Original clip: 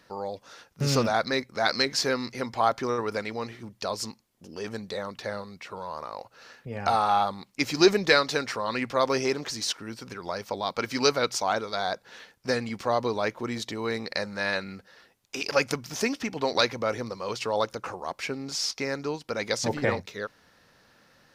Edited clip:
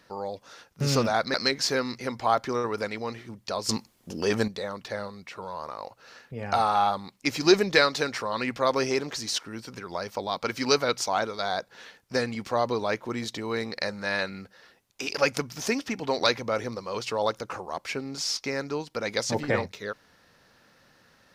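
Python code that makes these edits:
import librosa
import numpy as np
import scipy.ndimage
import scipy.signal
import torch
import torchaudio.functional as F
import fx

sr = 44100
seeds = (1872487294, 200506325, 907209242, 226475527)

y = fx.edit(x, sr, fx.cut(start_s=1.34, length_s=0.34),
    fx.clip_gain(start_s=4.03, length_s=0.79, db=10.0), tone=tone)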